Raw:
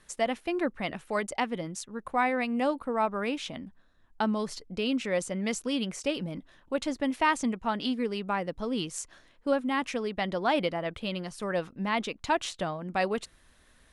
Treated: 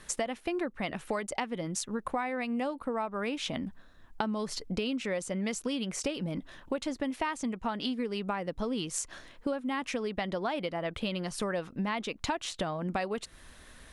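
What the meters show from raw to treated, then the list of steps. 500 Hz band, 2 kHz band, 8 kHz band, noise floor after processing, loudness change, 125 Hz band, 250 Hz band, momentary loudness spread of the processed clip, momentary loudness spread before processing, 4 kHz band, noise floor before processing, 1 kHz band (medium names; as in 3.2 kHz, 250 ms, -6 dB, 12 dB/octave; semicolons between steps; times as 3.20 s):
-3.5 dB, -4.5 dB, +2.0 dB, -55 dBFS, -3.5 dB, 0.0 dB, -2.5 dB, 4 LU, 9 LU, -2.0 dB, -61 dBFS, -5.0 dB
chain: compression 10:1, threshold -38 dBFS, peak gain reduction 18 dB; trim +8.5 dB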